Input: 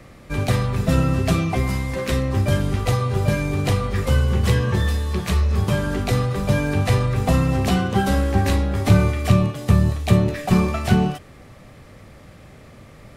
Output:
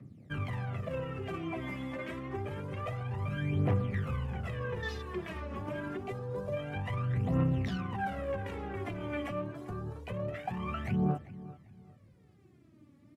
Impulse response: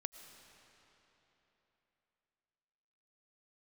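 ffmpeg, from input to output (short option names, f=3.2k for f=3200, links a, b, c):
-filter_complex "[0:a]highpass=f=96:w=0.5412,highpass=f=96:w=1.3066[a];[1:a]atrim=start_sample=2205,atrim=end_sample=3969[b];[a][b]afir=irnorm=-1:irlink=0,alimiter=limit=-21.5dB:level=0:latency=1:release=41,asettb=1/sr,asplit=3[c][d][e];[c]atrim=end=5.974[f];[d]atrim=start=5.97:end=6.57,asetpts=PTS-STARTPTS,afade=t=in:d=0.004:c=qsin,afade=t=out:st=0.596:d=0.004:c=qsin,equalizer=f=1.5k:w=1.5:g=-7[g];[e]atrim=start=6.566[h];[f][g]acrossfade=d=0.004:c1=hsin:c2=qsin[i];[i][h]acrossfade=d=0.004:c1=qsin:c2=hsin,afwtdn=0.00891,aphaser=in_gain=1:out_gain=1:delay=3.6:decay=0.72:speed=0.27:type=triangular,asplit=2[j][k];[k]adelay=394,lowpass=f=4k:p=1,volume=-17.5dB,asplit=2[l][m];[m]adelay=394,lowpass=f=4k:p=1,volume=0.28,asplit=2[n][o];[o]adelay=394,lowpass=f=4k:p=1,volume=0.28[p];[j][l][n][p]amix=inputs=4:normalize=0,volume=-8.5dB"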